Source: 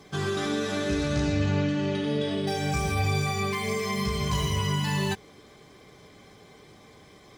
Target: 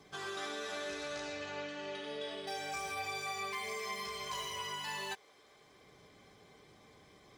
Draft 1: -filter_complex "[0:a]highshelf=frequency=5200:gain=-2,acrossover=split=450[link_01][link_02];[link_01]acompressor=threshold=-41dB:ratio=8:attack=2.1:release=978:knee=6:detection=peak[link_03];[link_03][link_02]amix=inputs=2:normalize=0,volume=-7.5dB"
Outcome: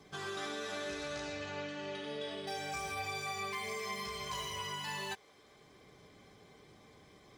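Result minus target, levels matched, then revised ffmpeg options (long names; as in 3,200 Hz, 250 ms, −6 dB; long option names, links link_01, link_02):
downward compressor: peak gain reduction −7.5 dB
-filter_complex "[0:a]highshelf=frequency=5200:gain=-2,acrossover=split=450[link_01][link_02];[link_01]acompressor=threshold=-49.5dB:ratio=8:attack=2.1:release=978:knee=6:detection=peak[link_03];[link_03][link_02]amix=inputs=2:normalize=0,volume=-7.5dB"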